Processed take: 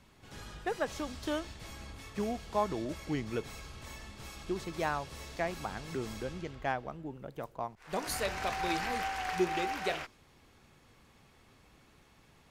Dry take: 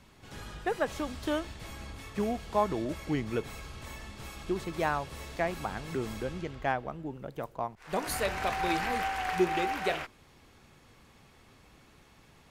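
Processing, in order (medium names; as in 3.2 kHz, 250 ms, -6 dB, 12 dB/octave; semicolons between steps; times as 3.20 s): dynamic bell 5.5 kHz, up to +5 dB, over -56 dBFS, Q 1.2; trim -3.5 dB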